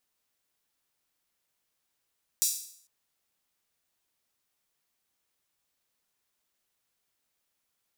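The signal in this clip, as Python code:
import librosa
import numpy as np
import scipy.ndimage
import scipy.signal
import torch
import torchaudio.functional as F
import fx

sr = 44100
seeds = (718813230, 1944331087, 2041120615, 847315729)

y = fx.drum_hat_open(sr, length_s=0.45, from_hz=5900.0, decay_s=0.6)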